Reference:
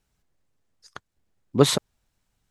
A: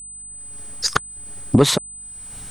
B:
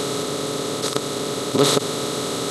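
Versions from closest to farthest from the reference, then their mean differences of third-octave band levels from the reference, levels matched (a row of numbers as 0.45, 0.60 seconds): A, B; 8.0, 13.5 decibels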